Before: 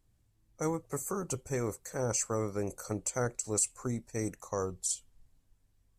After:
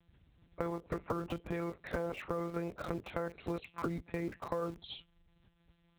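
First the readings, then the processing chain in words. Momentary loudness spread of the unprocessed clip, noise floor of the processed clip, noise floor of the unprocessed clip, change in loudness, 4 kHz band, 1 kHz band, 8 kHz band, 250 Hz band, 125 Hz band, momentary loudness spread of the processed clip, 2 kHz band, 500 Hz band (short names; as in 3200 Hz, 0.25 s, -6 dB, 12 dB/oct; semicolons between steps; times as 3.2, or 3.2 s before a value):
7 LU, -72 dBFS, -71 dBFS, -5.5 dB, -2.0 dB, -1.0 dB, -31.0 dB, -2.0 dB, -5.0 dB, 3 LU, 0.0 dB, -3.5 dB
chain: recorder AGC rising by 5.7 dB/s; monotone LPC vocoder at 8 kHz 170 Hz; high shelf 2900 Hz +6 dB; in parallel at -12 dB: bit-crush 7-bit; on the sum: limiter -22.5 dBFS, peak gain reduction 6.5 dB; compressor, threshold -39 dBFS, peak gain reduction 11.5 dB; HPF 42 Hz; gain +7 dB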